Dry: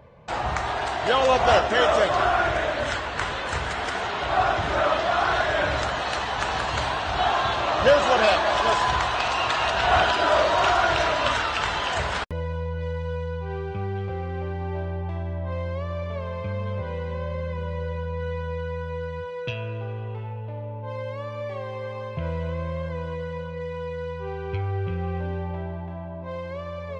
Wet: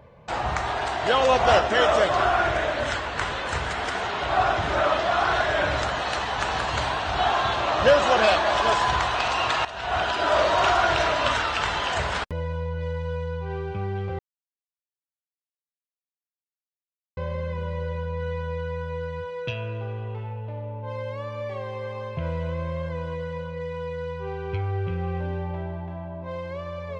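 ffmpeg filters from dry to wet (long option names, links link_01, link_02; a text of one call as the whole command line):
ffmpeg -i in.wav -filter_complex "[0:a]asplit=4[link_01][link_02][link_03][link_04];[link_01]atrim=end=9.65,asetpts=PTS-STARTPTS,afade=type=out:start_time=9.646:duration=0.004:curve=hsin:silence=0.188365[link_05];[link_02]atrim=start=9.65:end=14.19,asetpts=PTS-STARTPTS,afade=type=in:duration=0.81:silence=0.188365,afade=type=out:start_time=4.536:duration=0.004:curve=hsin[link_06];[link_03]atrim=start=14.19:end=17.17,asetpts=PTS-STARTPTS,volume=0[link_07];[link_04]atrim=start=17.17,asetpts=PTS-STARTPTS,afade=type=in:duration=0.004:curve=hsin[link_08];[link_05][link_06][link_07][link_08]concat=n=4:v=0:a=1" out.wav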